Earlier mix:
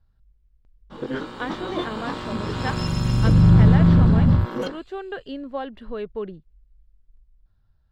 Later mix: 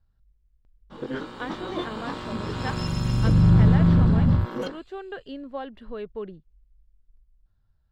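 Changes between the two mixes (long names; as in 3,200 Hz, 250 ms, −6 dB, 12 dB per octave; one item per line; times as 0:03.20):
speech −4.0 dB
background −3.0 dB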